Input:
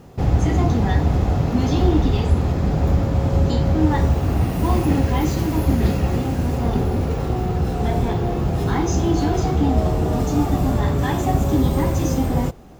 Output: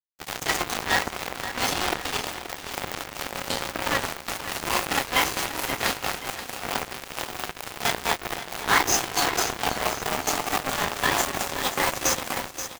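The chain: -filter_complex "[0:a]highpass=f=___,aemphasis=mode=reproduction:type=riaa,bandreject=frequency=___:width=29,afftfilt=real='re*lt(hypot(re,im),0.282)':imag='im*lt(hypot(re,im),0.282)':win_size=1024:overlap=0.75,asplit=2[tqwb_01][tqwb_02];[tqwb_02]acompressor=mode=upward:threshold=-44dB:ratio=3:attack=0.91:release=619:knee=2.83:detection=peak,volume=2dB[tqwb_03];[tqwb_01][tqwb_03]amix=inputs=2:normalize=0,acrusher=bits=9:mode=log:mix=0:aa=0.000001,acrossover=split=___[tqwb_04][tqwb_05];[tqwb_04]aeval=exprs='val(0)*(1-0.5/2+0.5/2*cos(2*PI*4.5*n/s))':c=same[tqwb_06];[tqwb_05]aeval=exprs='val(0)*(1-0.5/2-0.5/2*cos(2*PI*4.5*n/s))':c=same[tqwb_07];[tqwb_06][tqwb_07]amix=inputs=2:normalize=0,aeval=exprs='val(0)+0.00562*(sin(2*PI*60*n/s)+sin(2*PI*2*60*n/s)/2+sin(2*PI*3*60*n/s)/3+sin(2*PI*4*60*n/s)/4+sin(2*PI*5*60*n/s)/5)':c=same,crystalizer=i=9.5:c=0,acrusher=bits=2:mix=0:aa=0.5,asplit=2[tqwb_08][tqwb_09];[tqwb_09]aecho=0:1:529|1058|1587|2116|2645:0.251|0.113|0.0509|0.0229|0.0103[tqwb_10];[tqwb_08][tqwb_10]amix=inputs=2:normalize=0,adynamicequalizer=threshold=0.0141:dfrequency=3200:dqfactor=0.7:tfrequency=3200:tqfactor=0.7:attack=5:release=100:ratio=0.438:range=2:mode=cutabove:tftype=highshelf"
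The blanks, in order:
860, 3600, 570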